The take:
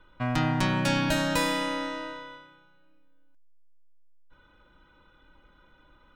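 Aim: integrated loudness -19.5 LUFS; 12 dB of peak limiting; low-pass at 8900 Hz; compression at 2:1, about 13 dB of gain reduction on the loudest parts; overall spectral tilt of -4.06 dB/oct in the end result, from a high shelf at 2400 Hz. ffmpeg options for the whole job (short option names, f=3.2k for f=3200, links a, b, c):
-af "lowpass=8.9k,highshelf=f=2.4k:g=8,acompressor=threshold=-44dB:ratio=2,volume=21.5dB,alimiter=limit=-10dB:level=0:latency=1"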